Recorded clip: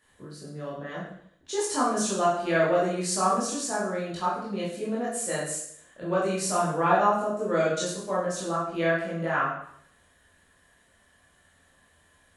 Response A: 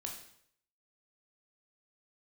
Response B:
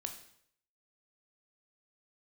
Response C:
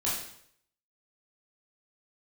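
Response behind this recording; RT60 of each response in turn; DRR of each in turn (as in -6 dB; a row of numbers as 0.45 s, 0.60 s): C; 0.65 s, 0.65 s, 0.65 s; 0.5 dB, 4.5 dB, -8.0 dB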